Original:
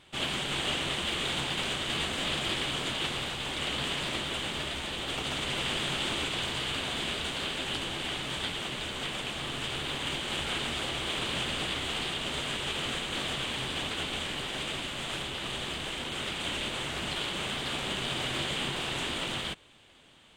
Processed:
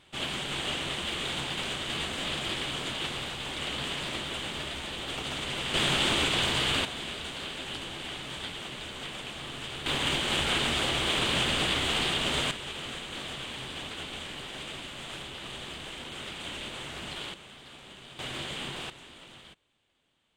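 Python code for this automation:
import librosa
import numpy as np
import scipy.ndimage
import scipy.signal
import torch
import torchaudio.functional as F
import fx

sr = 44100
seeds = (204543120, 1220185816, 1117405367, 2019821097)

y = fx.gain(x, sr, db=fx.steps((0.0, -1.5), (5.74, 5.5), (6.85, -4.0), (9.86, 5.0), (12.51, -5.0), (17.34, -15.5), (18.19, -4.5), (18.9, -16.5)))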